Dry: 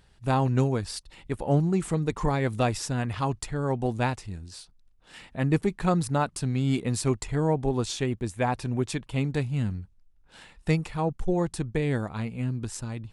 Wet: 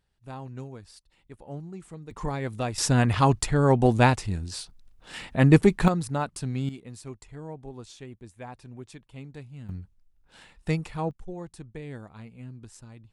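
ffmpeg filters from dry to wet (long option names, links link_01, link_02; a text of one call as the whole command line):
ffmpeg -i in.wav -af "asetnsamples=nb_out_samples=441:pad=0,asendcmd='2.11 volume volume -5dB;2.78 volume volume 7.5dB;5.88 volume volume -3dB;6.69 volume volume -15dB;9.69 volume volume -2.5dB;11.11 volume volume -12.5dB',volume=-15.5dB" out.wav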